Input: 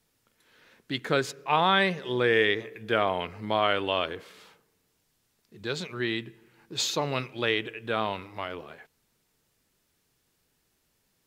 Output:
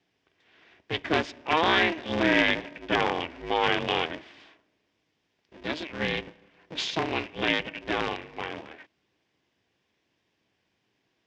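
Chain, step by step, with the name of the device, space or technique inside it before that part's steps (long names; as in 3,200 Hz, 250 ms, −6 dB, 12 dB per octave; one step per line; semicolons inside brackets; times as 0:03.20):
ring modulator pedal into a guitar cabinet (ring modulator with a square carrier 160 Hz; loudspeaker in its box 110–4,600 Hz, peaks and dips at 160 Hz −6 dB, 250 Hz −4 dB, 580 Hz −6 dB, 870 Hz −3 dB, 1,300 Hz −9 dB, 4,200 Hz −8 dB)
level +3.5 dB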